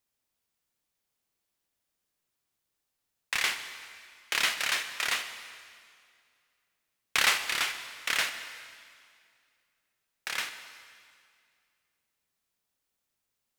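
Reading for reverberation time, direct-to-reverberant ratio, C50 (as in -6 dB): 2.2 s, 8.0 dB, 9.0 dB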